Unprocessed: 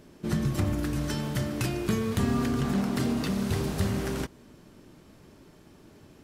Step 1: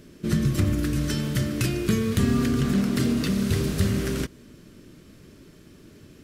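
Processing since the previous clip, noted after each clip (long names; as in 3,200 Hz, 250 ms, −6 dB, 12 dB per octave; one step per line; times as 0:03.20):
parametric band 830 Hz −13 dB 0.77 octaves
level +5 dB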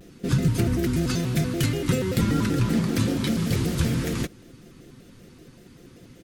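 comb filter 6.6 ms, depth 39%
pitch modulation by a square or saw wave square 5.2 Hz, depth 250 cents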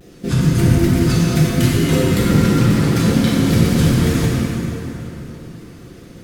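dense smooth reverb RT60 3.7 s, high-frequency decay 0.65×, DRR −5.5 dB
level +2.5 dB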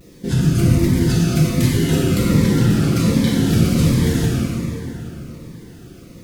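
bit reduction 9 bits
phaser whose notches keep moving one way falling 1.3 Hz
level −1 dB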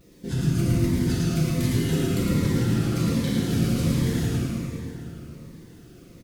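bit-depth reduction 10 bits, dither none
single-tap delay 109 ms −3.5 dB
level −9 dB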